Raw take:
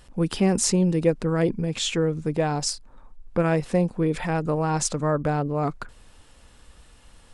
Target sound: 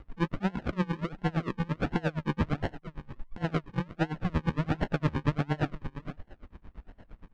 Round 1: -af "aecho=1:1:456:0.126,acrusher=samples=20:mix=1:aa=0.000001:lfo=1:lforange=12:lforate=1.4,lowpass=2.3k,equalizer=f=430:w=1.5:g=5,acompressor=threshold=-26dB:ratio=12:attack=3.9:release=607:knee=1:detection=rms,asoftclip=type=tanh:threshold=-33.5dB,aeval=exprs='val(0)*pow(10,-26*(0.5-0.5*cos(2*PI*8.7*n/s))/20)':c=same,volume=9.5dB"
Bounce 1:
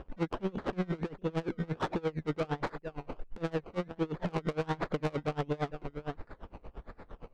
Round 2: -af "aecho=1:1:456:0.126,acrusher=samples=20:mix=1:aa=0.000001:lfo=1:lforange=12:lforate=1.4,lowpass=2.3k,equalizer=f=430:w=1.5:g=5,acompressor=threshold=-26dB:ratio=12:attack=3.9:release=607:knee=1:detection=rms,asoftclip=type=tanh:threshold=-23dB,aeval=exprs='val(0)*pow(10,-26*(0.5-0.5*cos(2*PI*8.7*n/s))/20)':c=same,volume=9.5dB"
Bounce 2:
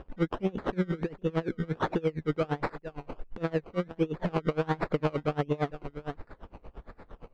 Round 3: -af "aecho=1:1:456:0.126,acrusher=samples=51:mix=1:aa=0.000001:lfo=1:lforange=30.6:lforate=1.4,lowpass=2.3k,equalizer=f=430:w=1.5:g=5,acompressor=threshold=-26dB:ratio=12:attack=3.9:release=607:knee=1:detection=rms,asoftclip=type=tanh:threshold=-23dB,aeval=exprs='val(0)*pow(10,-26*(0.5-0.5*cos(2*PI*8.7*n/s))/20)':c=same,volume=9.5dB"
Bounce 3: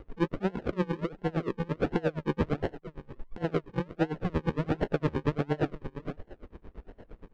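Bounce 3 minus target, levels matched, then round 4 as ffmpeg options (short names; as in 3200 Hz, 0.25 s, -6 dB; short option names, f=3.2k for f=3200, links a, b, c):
500 Hz band +5.0 dB
-af "aecho=1:1:456:0.126,acrusher=samples=51:mix=1:aa=0.000001:lfo=1:lforange=30.6:lforate=1.4,lowpass=2.3k,equalizer=f=430:w=1.5:g=-6,acompressor=threshold=-26dB:ratio=12:attack=3.9:release=607:knee=1:detection=rms,asoftclip=type=tanh:threshold=-23dB,aeval=exprs='val(0)*pow(10,-26*(0.5-0.5*cos(2*PI*8.7*n/s))/20)':c=same,volume=9.5dB"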